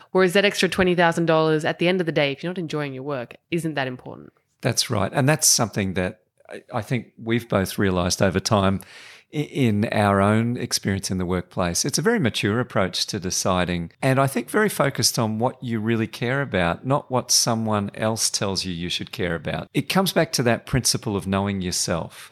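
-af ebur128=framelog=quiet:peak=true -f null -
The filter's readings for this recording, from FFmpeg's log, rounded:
Integrated loudness:
  I:         -22.0 LUFS
  Threshold: -32.2 LUFS
Loudness range:
  LRA:         2.2 LU
  Threshold: -42.4 LUFS
  LRA low:   -23.7 LUFS
  LRA high:  -21.5 LUFS
True peak:
  Peak:       -3.7 dBFS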